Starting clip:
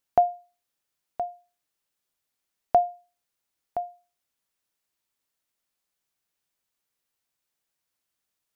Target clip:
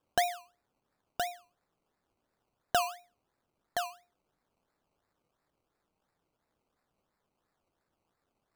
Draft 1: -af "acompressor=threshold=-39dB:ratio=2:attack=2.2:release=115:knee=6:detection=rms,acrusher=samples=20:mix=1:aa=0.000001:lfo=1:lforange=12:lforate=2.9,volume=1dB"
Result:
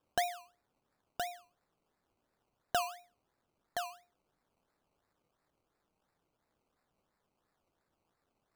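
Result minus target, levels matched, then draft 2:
downward compressor: peak gain reduction +4 dB
-af "acompressor=threshold=-30.5dB:ratio=2:attack=2.2:release=115:knee=6:detection=rms,acrusher=samples=20:mix=1:aa=0.000001:lfo=1:lforange=12:lforate=2.9,volume=1dB"

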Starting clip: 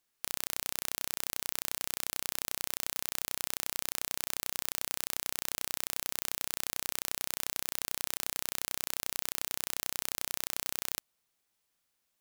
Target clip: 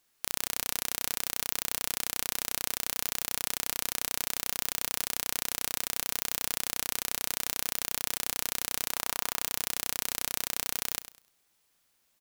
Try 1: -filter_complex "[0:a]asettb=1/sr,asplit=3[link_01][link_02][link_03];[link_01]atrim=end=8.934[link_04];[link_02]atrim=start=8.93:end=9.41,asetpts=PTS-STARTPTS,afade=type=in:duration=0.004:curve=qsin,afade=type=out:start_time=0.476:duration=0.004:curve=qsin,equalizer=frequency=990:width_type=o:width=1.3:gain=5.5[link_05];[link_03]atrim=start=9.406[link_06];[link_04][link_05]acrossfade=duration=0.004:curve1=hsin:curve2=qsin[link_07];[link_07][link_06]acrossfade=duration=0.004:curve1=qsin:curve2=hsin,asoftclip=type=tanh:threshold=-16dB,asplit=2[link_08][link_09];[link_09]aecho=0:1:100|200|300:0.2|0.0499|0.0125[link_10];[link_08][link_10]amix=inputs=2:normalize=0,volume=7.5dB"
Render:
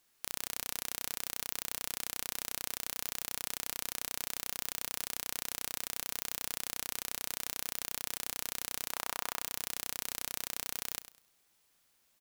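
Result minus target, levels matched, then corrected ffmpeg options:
soft clipping: distortion +11 dB
-filter_complex "[0:a]asettb=1/sr,asplit=3[link_01][link_02][link_03];[link_01]atrim=end=8.934[link_04];[link_02]atrim=start=8.93:end=9.41,asetpts=PTS-STARTPTS,afade=type=in:duration=0.004:curve=qsin,afade=type=out:start_time=0.476:duration=0.004:curve=qsin,equalizer=frequency=990:width_type=o:width=1.3:gain=5.5[link_05];[link_03]atrim=start=9.406[link_06];[link_04][link_05]acrossfade=duration=0.004:curve1=hsin:curve2=qsin[link_07];[link_07][link_06]acrossfade=duration=0.004:curve1=qsin:curve2=hsin,asoftclip=type=tanh:threshold=-9dB,asplit=2[link_08][link_09];[link_09]aecho=0:1:100|200|300:0.2|0.0499|0.0125[link_10];[link_08][link_10]amix=inputs=2:normalize=0,volume=7.5dB"

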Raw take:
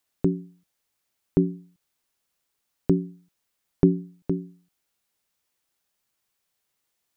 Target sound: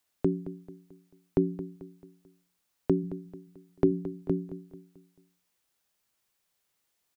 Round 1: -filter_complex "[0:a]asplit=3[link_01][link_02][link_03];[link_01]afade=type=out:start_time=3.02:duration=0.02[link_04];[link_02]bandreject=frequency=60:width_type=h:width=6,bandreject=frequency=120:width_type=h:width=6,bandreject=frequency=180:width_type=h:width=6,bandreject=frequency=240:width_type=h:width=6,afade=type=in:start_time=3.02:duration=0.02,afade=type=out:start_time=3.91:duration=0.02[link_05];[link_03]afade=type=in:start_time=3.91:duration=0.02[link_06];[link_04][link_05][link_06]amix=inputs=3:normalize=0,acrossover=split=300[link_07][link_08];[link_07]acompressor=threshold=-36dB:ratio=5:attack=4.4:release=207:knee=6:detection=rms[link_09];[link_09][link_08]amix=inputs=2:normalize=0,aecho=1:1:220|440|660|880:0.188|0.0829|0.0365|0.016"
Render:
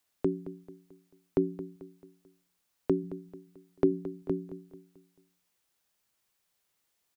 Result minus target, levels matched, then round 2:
downward compressor: peak gain reduction +8.5 dB
-filter_complex "[0:a]asplit=3[link_01][link_02][link_03];[link_01]afade=type=out:start_time=3.02:duration=0.02[link_04];[link_02]bandreject=frequency=60:width_type=h:width=6,bandreject=frequency=120:width_type=h:width=6,bandreject=frequency=180:width_type=h:width=6,bandreject=frequency=240:width_type=h:width=6,afade=type=in:start_time=3.02:duration=0.02,afade=type=out:start_time=3.91:duration=0.02[link_05];[link_03]afade=type=in:start_time=3.91:duration=0.02[link_06];[link_04][link_05][link_06]amix=inputs=3:normalize=0,acrossover=split=300[link_07][link_08];[link_07]acompressor=threshold=-25.5dB:ratio=5:attack=4.4:release=207:knee=6:detection=rms[link_09];[link_09][link_08]amix=inputs=2:normalize=0,aecho=1:1:220|440|660|880:0.188|0.0829|0.0365|0.016"

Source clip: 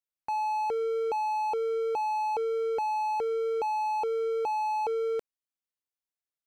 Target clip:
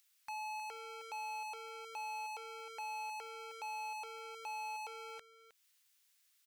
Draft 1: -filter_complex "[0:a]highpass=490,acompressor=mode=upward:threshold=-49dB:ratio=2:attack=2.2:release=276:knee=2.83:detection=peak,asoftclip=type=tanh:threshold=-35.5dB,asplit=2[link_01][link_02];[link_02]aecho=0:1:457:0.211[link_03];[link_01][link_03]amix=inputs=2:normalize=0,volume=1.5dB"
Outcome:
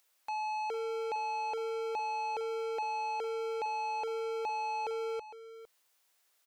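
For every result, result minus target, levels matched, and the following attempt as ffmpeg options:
echo 144 ms late; 500 Hz band +9.0 dB
-filter_complex "[0:a]highpass=490,acompressor=mode=upward:threshold=-49dB:ratio=2:attack=2.2:release=276:knee=2.83:detection=peak,asoftclip=type=tanh:threshold=-35.5dB,asplit=2[link_01][link_02];[link_02]aecho=0:1:313:0.211[link_03];[link_01][link_03]amix=inputs=2:normalize=0,volume=1.5dB"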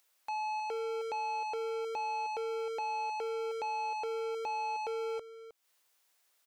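500 Hz band +9.0 dB
-filter_complex "[0:a]highpass=1900,acompressor=mode=upward:threshold=-49dB:ratio=2:attack=2.2:release=276:knee=2.83:detection=peak,asoftclip=type=tanh:threshold=-35.5dB,asplit=2[link_01][link_02];[link_02]aecho=0:1:313:0.211[link_03];[link_01][link_03]amix=inputs=2:normalize=0,volume=1.5dB"

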